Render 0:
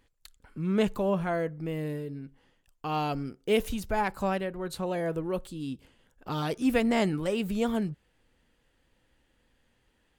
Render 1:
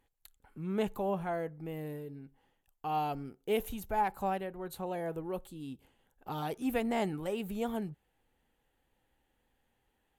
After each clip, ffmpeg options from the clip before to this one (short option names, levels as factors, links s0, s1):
-af "equalizer=f=400:t=o:w=0.33:g=3,equalizer=f=800:t=o:w=0.33:g=10,equalizer=f=5000:t=o:w=0.33:g=-7,equalizer=f=12500:t=o:w=0.33:g=12,volume=0.398"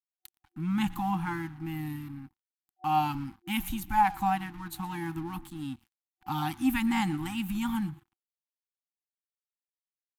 -filter_complex "[0:a]asplit=4[s0][s1][s2][s3];[s1]adelay=117,afreqshift=-40,volume=0.112[s4];[s2]adelay=234,afreqshift=-80,volume=0.0495[s5];[s3]adelay=351,afreqshift=-120,volume=0.0216[s6];[s0][s4][s5][s6]amix=inputs=4:normalize=0,aeval=exprs='sgn(val(0))*max(abs(val(0))-0.00141,0)':c=same,afftfilt=real='re*(1-between(b*sr/4096,350,750))':imag='im*(1-between(b*sr/4096,350,750))':win_size=4096:overlap=0.75,volume=2.37"